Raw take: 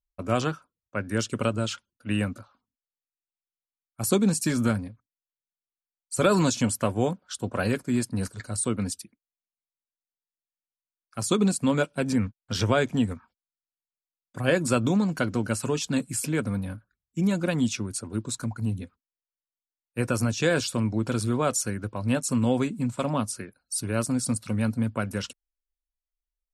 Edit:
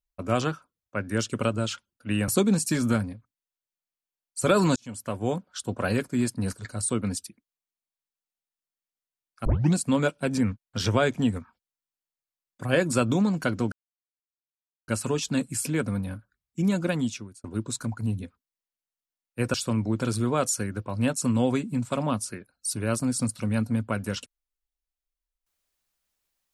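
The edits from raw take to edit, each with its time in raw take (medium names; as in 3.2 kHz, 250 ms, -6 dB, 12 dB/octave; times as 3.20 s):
2.28–4.03 s: delete
6.51–7.20 s: fade in
11.20 s: tape start 0.29 s
15.47 s: insert silence 1.16 s
17.47–18.03 s: fade out
20.13–20.61 s: delete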